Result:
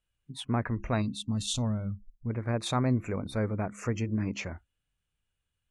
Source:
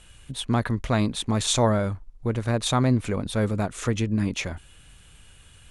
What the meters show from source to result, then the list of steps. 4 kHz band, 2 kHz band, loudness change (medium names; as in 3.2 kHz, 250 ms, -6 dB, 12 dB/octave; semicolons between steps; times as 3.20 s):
-8.0 dB, -7.0 dB, -6.5 dB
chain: time-frequency box 1.02–2.30 s, 290–2600 Hz -13 dB; de-hum 68.19 Hz, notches 5; spectral noise reduction 26 dB; treble shelf 4.7 kHz -5.5 dB; trim -5.5 dB